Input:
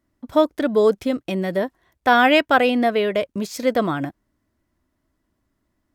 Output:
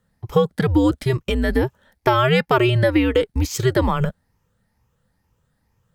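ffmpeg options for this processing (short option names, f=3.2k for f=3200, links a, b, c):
-af "afftfilt=real='re*pow(10,7/40*sin(2*PI*(0.83*log(max(b,1)*sr/1024/100)/log(2)-(2.2)*(pts-256)/sr)))':imag='im*pow(10,7/40*sin(2*PI*(0.83*log(max(b,1)*sr/1024/100)/log(2)-(2.2)*(pts-256)/sr)))':win_size=1024:overlap=0.75,afreqshift=-130,acompressor=threshold=-17dB:ratio=6,volume=4.5dB"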